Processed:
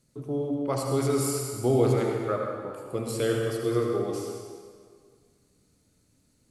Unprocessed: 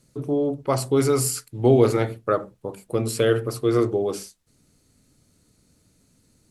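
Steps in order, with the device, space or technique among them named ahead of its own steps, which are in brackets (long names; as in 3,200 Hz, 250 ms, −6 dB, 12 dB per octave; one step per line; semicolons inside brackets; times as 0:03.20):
stairwell (convolution reverb RT60 1.9 s, pre-delay 64 ms, DRR 0.5 dB)
level −7.5 dB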